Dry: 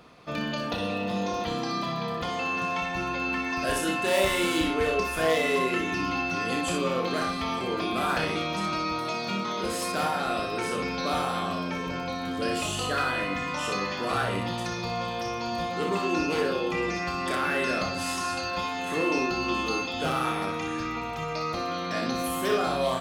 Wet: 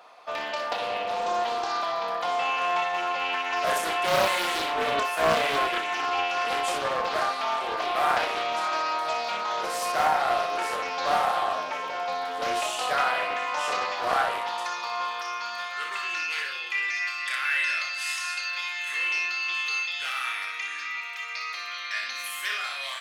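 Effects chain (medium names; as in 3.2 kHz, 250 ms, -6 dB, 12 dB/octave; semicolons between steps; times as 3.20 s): high-pass sweep 740 Hz -> 2 kHz, 14.11–16.47 s; loudspeaker Doppler distortion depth 0.3 ms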